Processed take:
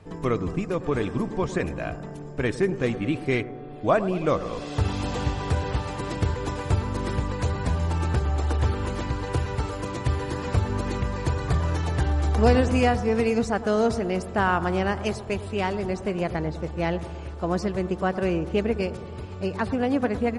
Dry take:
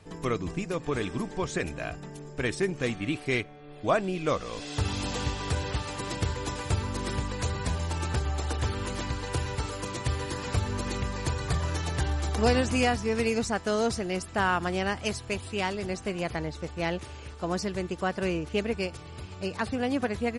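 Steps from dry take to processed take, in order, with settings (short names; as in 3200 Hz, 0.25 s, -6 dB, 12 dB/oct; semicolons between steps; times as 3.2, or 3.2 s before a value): high shelf 2300 Hz -10.5 dB; analogue delay 0.108 s, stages 1024, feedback 68%, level -14 dB; gain +5 dB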